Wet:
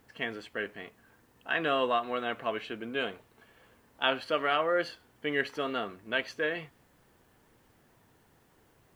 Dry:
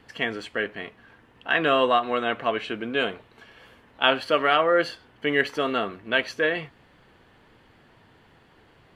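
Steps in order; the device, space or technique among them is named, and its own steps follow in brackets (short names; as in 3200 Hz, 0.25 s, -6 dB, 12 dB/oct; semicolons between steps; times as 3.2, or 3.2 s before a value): plain cassette with noise reduction switched in (mismatched tape noise reduction decoder only; wow and flutter 29 cents; white noise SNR 39 dB); gain -7.5 dB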